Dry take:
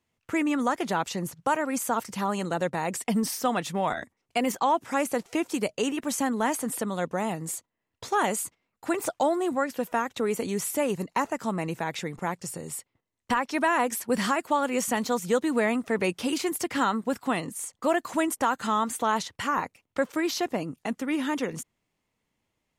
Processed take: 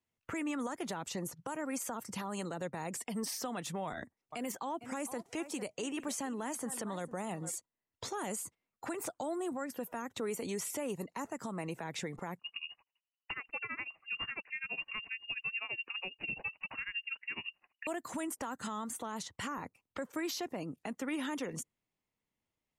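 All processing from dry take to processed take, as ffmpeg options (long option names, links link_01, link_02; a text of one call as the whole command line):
ffmpeg -i in.wav -filter_complex "[0:a]asettb=1/sr,asplit=3[link_01][link_02][link_03];[link_01]atrim=end=3.874[link_04];[link_02]atrim=start=3.87:end=7.52,asetpts=PTS-STARTPTS,afade=type=in:duration=0.004:curve=qsin,afade=type=out:start_time=3.646:duration=0.004:curve=qsin,equalizer=frequency=12000:width=8:gain=-7,aecho=1:1:452:0.119,atrim=end_sample=160965[link_05];[link_03]atrim=start=7.516[link_06];[link_04][link_05]acrossfade=duration=0.004:curve1=hsin:curve2=qsin[link_07];[link_07][link_06]acrossfade=duration=0.004:curve1=qsin:curve2=hsin,asettb=1/sr,asplit=3[link_08][link_09][link_10];[link_08]atrim=end=12.394[link_11];[link_09]atrim=start=12.39:end=17.87,asetpts=PTS-STARTPTS,afade=type=in:duration=0.004:curve=qsin,afade=type=out:start_time=5.476:duration=0.004:curve=qsin,equalizer=frequency=200:width_type=o:width=1:gain=5.5,tremolo=f=12:d=0.92,lowpass=frequency=2600:width_type=q:width=0.5098,lowpass=frequency=2600:width_type=q:width=0.6013,lowpass=frequency=2600:width_type=q:width=0.9,lowpass=frequency=2600:width_type=q:width=2.563,afreqshift=-3000[link_12];[link_10]atrim=start=17.866[link_13];[link_11][link_12]acrossfade=duration=0.004:curve1=hsin:curve2=qsin[link_14];[link_14][link_13]acrossfade=duration=0.004:curve1=qsin:curve2=hsin,afftdn=noise_reduction=12:noise_floor=-50,acrossover=split=360|7300[link_15][link_16][link_17];[link_15]acompressor=threshold=-43dB:ratio=4[link_18];[link_16]acompressor=threshold=-39dB:ratio=4[link_19];[link_17]acompressor=threshold=-46dB:ratio=4[link_20];[link_18][link_19][link_20]amix=inputs=3:normalize=0,alimiter=level_in=6dB:limit=-24dB:level=0:latency=1:release=36,volume=-6dB,volume=1dB" out.wav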